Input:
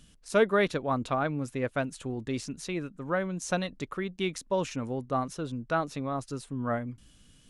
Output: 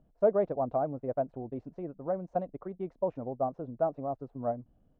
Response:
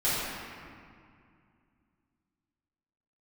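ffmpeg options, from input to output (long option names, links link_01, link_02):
-af "lowpass=frequency=690:width_type=q:width=3.6,atempo=1.5,volume=-7dB"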